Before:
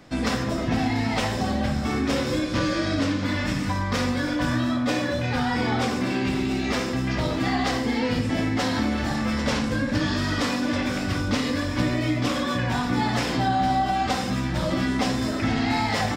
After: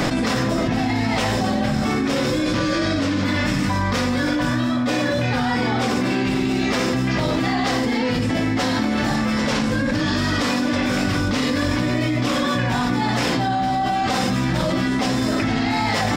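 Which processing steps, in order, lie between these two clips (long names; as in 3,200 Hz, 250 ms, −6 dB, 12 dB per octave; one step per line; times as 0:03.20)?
parametric band 70 Hz −13 dB 0.34 octaves
envelope flattener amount 100%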